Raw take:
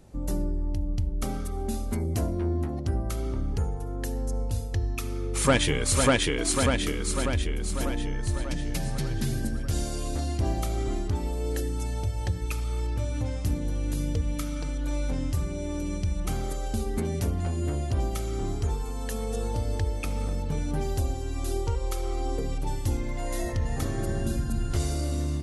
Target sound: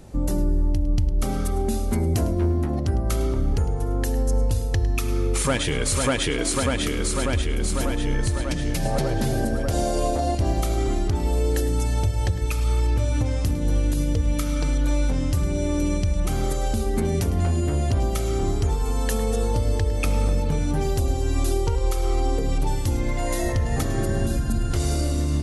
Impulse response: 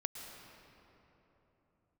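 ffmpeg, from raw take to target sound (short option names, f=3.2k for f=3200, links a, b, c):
-filter_complex "[0:a]asettb=1/sr,asplit=3[a][b][c];[a]atrim=end=8.854[d];[b]atrim=start=8.85:end=10.35,asetpts=PTS-STARTPTS,afade=t=in:d=0.004:c=qsin,afade=t=out:st=1.496:d=0.004:c=qsin,equalizer=f=630:t=o:w=1.3:g=14[e];[c]atrim=start=10.346[f];[d][e]acrossfade=d=0.004:c1=hsin:c2=qsin[g];[g][f]acrossfade=d=0.004:c1=qsin:c2=hsin,alimiter=limit=-22dB:level=0:latency=1:release=216,asplit=2[h][i];[1:a]atrim=start_sample=2205,adelay=105[j];[i][j]afir=irnorm=-1:irlink=0,volume=-13.5dB[k];[h][k]amix=inputs=2:normalize=0,volume=8.5dB"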